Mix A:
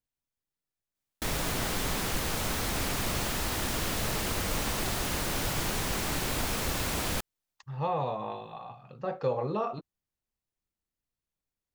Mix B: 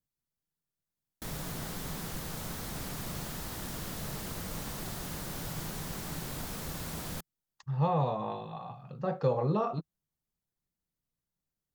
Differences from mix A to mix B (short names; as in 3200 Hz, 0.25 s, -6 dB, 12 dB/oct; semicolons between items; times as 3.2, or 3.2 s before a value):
background -9.5 dB; master: add fifteen-band EQ 160 Hz +9 dB, 2500 Hz -4 dB, 16000 Hz +5 dB